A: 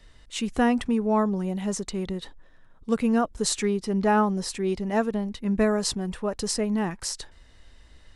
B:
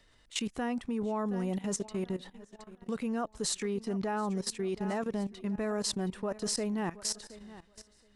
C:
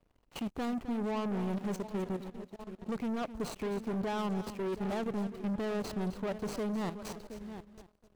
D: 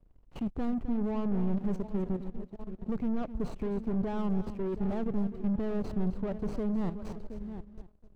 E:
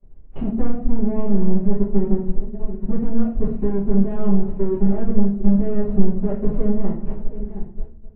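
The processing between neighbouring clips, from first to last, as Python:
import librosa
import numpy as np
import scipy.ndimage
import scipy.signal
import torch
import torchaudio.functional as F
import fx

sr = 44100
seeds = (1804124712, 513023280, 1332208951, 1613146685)

y1 = fx.low_shelf(x, sr, hz=110.0, db=-9.5)
y1 = fx.echo_feedback(y1, sr, ms=721, feedback_pct=43, wet_db=-19.5)
y1 = fx.level_steps(y1, sr, step_db=16)
y2 = scipy.signal.medfilt(y1, 25)
y2 = fx.leveller(y2, sr, passes=3)
y2 = y2 + 10.0 ** (-12.5 / 20.0) * np.pad(y2, (int(260 * sr / 1000.0), 0))[:len(y2)]
y2 = y2 * librosa.db_to_amplitude(-6.0)
y3 = fx.tilt_eq(y2, sr, slope=-3.5)
y3 = y3 * librosa.db_to_amplitude(-4.0)
y4 = fx.transient(y3, sr, attack_db=5, sustain_db=-10)
y4 = scipy.ndimage.gaussian_filter1d(y4, 3.5, mode='constant')
y4 = fx.room_shoebox(y4, sr, seeds[0], volume_m3=42.0, walls='mixed', distance_m=1.4)
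y4 = y4 * librosa.db_to_amplitude(-1.5)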